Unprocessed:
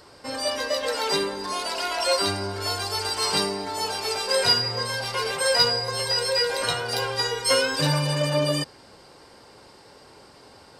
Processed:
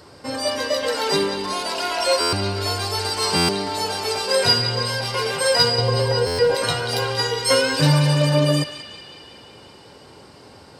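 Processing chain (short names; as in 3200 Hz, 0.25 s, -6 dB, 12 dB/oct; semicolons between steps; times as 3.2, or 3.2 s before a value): 5.78–6.55 tilt shelf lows +8 dB, about 1300 Hz; HPF 70 Hz; low shelf 320 Hz +8 dB; narrowing echo 0.185 s, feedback 72%, band-pass 2900 Hz, level -8 dB; stuck buffer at 2.2/3.36/6.26, samples 512, times 10; gain +2 dB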